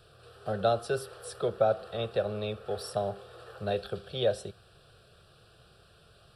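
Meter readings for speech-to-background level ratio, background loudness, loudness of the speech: 19.0 dB, −51.0 LKFS, −32.0 LKFS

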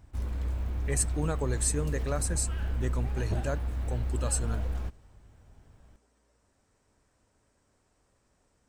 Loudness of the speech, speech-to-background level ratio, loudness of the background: −33.5 LKFS, 0.5 dB, −34.0 LKFS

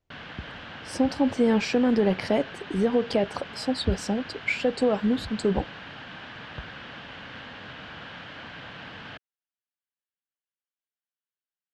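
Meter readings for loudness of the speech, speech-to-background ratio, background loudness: −25.5 LKFS, 15.0 dB, −40.5 LKFS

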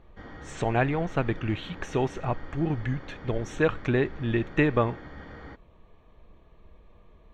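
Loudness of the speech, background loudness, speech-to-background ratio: −28.0 LKFS, −44.5 LKFS, 16.5 dB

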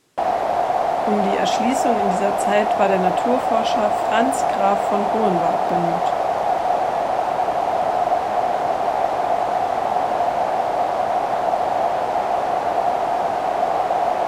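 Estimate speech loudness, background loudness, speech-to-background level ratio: −23.0 LKFS, −20.5 LKFS, −2.5 dB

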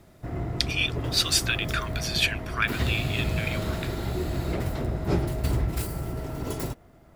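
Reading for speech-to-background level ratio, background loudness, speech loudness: 3.5 dB, −30.5 LKFS, −27.0 LKFS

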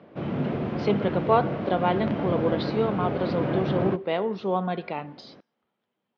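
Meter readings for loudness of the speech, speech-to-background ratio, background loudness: −27.5 LKFS, 1.5 dB, −29.0 LKFS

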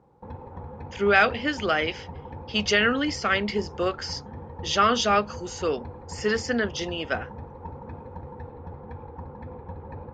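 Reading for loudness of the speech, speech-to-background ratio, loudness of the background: −25.0 LKFS, 15.5 dB, −40.5 LKFS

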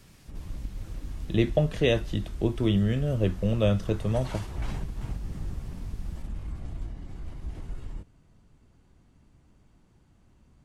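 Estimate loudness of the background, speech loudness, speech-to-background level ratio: −39.5 LKFS, −27.0 LKFS, 12.5 dB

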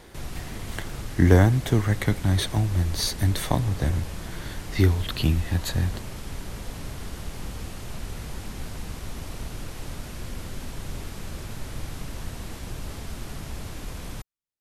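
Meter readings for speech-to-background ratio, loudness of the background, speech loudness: 14.0 dB, −37.5 LKFS, −23.5 LKFS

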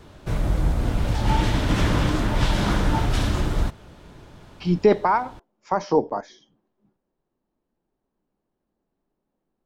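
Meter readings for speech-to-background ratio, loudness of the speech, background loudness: 0.5 dB, −23.0 LKFS, −23.5 LKFS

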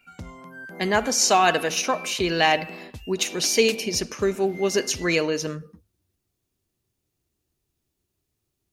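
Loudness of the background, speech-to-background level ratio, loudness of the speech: −39.0 LKFS, 16.5 dB, −22.5 LKFS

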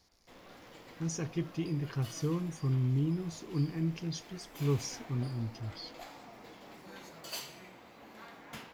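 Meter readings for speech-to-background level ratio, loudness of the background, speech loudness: 14.5 dB, −49.5 LKFS, −35.0 LKFS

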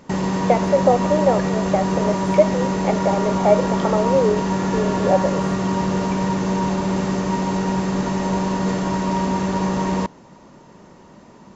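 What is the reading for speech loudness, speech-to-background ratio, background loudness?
−21.0 LKFS, 0.5 dB, −21.5 LKFS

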